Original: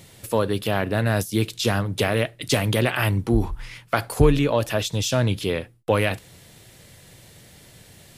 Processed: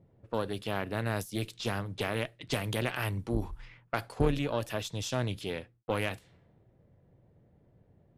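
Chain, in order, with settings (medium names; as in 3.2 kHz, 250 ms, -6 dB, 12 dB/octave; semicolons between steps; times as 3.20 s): valve stage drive 9 dB, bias 0.75; level-controlled noise filter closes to 550 Hz, open at -24.5 dBFS; trim -7 dB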